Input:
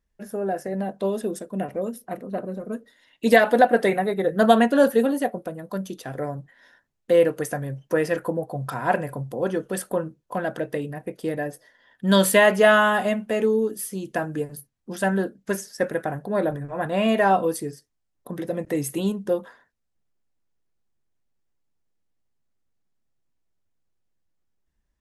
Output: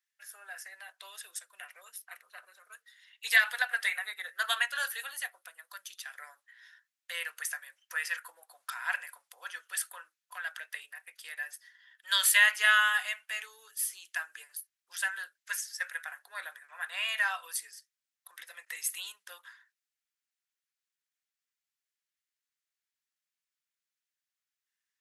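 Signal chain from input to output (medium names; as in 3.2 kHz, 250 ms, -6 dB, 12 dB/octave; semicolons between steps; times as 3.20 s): high-pass 1.5 kHz 24 dB/octave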